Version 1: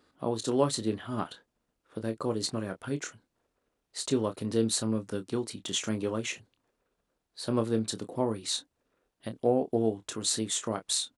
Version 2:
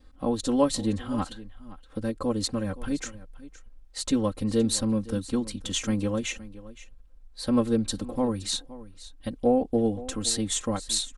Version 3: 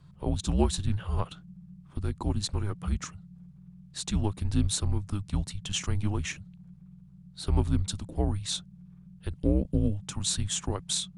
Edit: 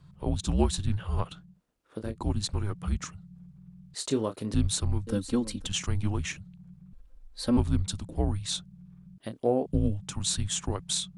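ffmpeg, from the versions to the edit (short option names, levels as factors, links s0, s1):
-filter_complex "[0:a]asplit=3[s0][s1][s2];[1:a]asplit=2[s3][s4];[2:a]asplit=6[s5][s6][s7][s8][s9][s10];[s5]atrim=end=1.61[s11];[s0]atrim=start=1.37:end=2.23[s12];[s6]atrim=start=1.99:end=3.952[s13];[s1]atrim=start=3.948:end=4.542[s14];[s7]atrim=start=4.538:end=5.072[s15];[s3]atrim=start=5.068:end=5.672[s16];[s8]atrim=start=5.668:end=6.932[s17];[s4]atrim=start=6.928:end=7.572[s18];[s9]atrim=start=7.568:end=9.182[s19];[s2]atrim=start=9.178:end=9.662[s20];[s10]atrim=start=9.658[s21];[s11][s12]acrossfade=d=0.24:c1=tri:c2=tri[s22];[s22][s13]acrossfade=d=0.24:c1=tri:c2=tri[s23];[s23][s14]acrossfade=d=0.004:c1=hsin:c2=hsin[s24];[s24][s15]acrossfade=d=0.004:c1=hsin:c2=hsin[s25];[s25][s16]acrossfade=d=0.004:c1=hsin:c2=hsin[s26];[s26][s17]acrossfade=d=0.004:c1=hsin:c2=hsin[s27];[s27][s18]acrossfade=d=0.004:c1=hsin:c2=hsin[s28];[s28][s19]acrossfade=d=0.004:c1=hsin:c2=hsin[s29];[s29][s20]acrossfade=d=0.004:c1=hsin:c2=hsin[s30];[s30][s21]acrossfade=d=0.004:c1=hsin:c2=hsin"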